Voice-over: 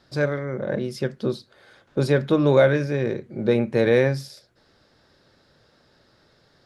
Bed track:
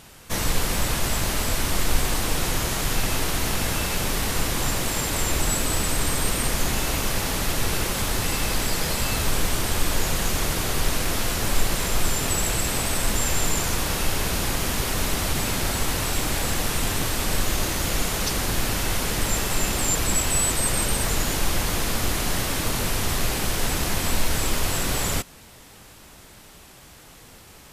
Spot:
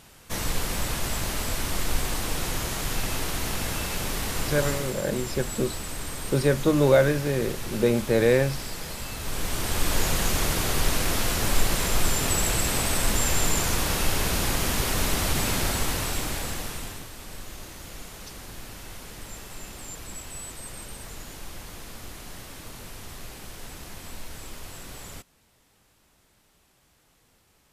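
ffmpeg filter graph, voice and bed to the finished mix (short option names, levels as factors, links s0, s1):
-filter_complex "[0:a]adelay=4350,volume=0.794[s0];[1:a]volume=1.88,afade=t=out:st=4.71:d=0.24:silence=0.501187,afade=t=in:st=9.19:d=0.8:silence=0.316228,afade=t=out:st=15.57:d=1.5:silence=0.158489[s1];[s0][s1]amix=inputs=2:normalize=0"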